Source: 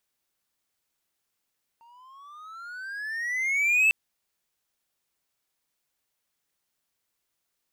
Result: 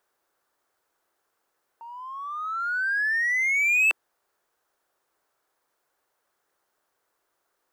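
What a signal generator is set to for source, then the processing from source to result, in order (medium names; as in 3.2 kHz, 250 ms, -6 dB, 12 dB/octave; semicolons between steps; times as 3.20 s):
gliding synth tone triangle, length 2.10 s, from 914 Hz, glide +18.5 st, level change +35.5 dB, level -14.5 dB
high-order bell 740 Hz +13 dB 2.7 oct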